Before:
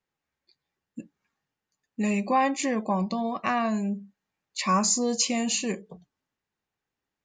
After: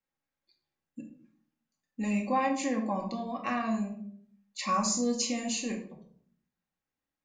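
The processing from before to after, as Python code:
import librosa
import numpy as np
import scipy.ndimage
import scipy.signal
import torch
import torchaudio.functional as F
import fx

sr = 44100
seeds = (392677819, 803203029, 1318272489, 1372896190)

y = fx.room_shoebox(x, sr, seeds[0], volume_m3=760.0, walls='furnished', distance_m=2.2)
y = F.gain(torch.from_numpy(y), -8.0).numpy()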